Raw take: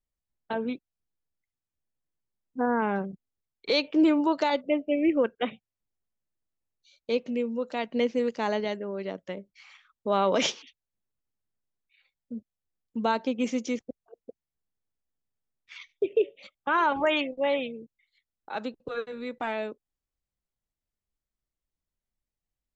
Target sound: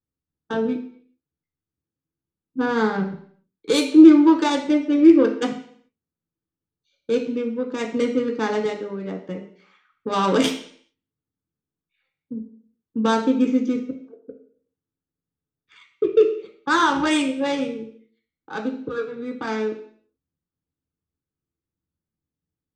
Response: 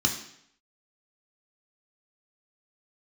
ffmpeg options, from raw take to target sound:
-filter_complex "[0:a]adynamicsmooth=sensitivity=1:basefreq=1100[link_01];[1:a]atrim=start_sample=2205,asetrate=52920,aresample=44100[link_02];[link_01][link_02]afir=irnorm=-1:irlink=0,crystalizer=i=4:c=0,volume=-4dB"

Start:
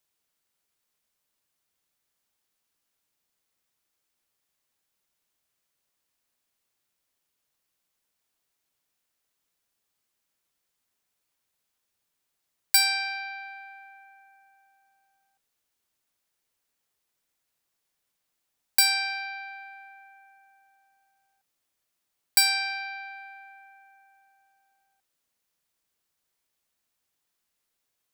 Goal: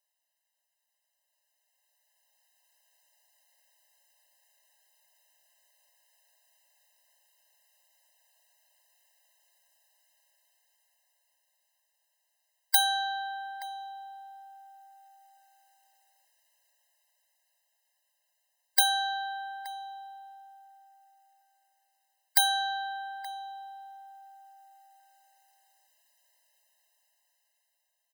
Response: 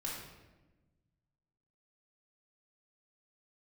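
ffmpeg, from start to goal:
-filter_complex "[0:a]asplit=2[link_01][link_02];[link_02]adelay=874.6,volume=-11dB,highshelf=frequency=4000:gain=-19.7[link_03];[link_01][link_03]amix=inputs=2:normalize=0,dynaudnorm=framelen=140:gausssize=31:maxgain=14dB,afftfilt=real='re*eq(mod(floor(b*sr/1024/530),2),1)':imag='im*eq(mod(floor(b*sr/1024/530),2),1)':win_size=1024:overlap=0.75"

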